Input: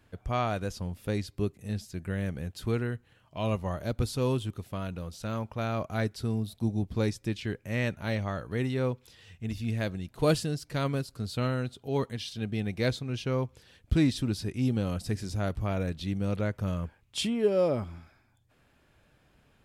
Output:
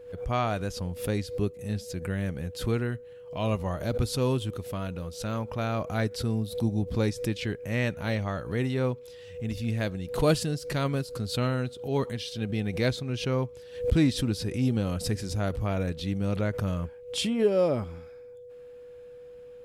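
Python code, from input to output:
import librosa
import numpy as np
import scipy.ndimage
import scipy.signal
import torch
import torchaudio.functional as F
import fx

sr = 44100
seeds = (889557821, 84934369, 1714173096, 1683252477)

y = x + 10.0 ** (-45.0 / 20.0) * np.sin(2.0 * np.pi * 490.0 * np.arange(len(x)) / sr)
y = fx.pre_swell(y, sr, db_per_s=120.0)
y = F.gain(torch.from_numpy(y), 1.5).numpy()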